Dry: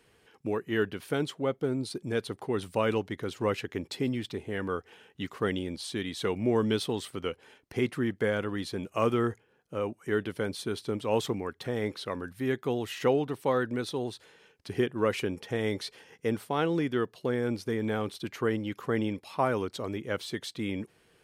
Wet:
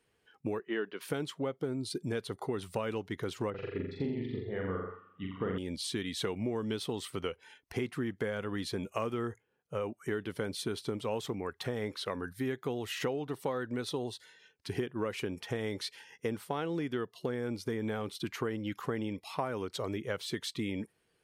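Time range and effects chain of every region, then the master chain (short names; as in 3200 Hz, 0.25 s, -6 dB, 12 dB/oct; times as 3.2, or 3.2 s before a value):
0.59–1.01 BPF 240–6200 Hz + high shelf 4300 Hz -8.5 dB
3.5–5.58 tape spacing loss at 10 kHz 35 dB + flutter echo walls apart 7.3 m, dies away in 1.1 s + upward expander, over -43 dBFS
whole clip: spectral noise reduction 13 dB; compressor 6:1, threshold -33 dBFS; gain +2 dB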